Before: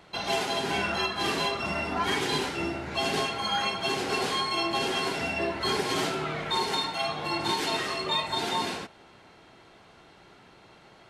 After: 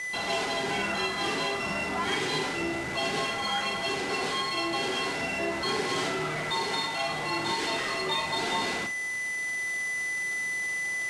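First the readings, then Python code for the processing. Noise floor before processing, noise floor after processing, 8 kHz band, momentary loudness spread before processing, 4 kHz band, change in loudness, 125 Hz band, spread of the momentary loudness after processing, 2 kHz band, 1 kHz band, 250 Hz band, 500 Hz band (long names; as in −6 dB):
−55 dBFS, −33 dBFS, +2.0 dB, 3 LU, −1.5 dB, −0.5 dB, −2.0 dB, 2 LU, +4.0 dB, −1.0 dB, −1.0 dB, −1.0 dB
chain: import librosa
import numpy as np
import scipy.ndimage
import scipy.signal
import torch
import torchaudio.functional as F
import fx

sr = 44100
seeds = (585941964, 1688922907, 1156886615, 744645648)

p1 = x + 10.0 ** (-35.0 / 20.0) * np.sin(2.0 * np.pi * 2000.0 * np.arange(len(x)) / sr)
p2 = fx.low_shelf(p1, sr, hz=61.0, db=-9.0)
p3 = fx.schmitt(p2, sr, flips_db=-41.0)
p4 = p2 + (p3 * librosa.db_to_amplitude(-3.5))
p5 = scipy.signal.sosfilt(scipy.signal.butter(4, 10000.0, 'lowpass', fs=sr, output='sos'), p4)
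p6 = p5 + fx.room_flutter(p5, sr, wall_m=7.7, rt60_s=0.27, dry=0)
p7 = fx.rider(p6, sr, range_db=10, speed_s=2.0)
p8 = fx.cheby_harmonics(p7, sr, harmonics=(3,), levels_db=(-25,), full_scale_db=-13.5)
y = p8 * librosa.db_to_amplitude(-3.5)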